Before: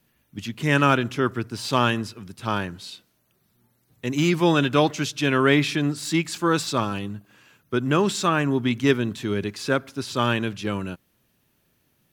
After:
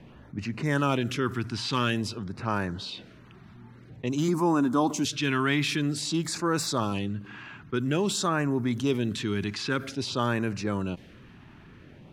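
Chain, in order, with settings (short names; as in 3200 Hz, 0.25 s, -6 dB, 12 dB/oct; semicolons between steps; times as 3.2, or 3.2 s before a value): low-pass opened by the level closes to 2000 Hz, open at -19.5 dBFS; 4.28–5.05 graphic EQ 125/250/500/1000/2000/4000/8000 Hz -8/+11/-6/+10/-11/-5/+5 dB; LFO notch sine 0.5 Hz 490–3400 Hz; fast leveller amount 50%; gain -8.5 dB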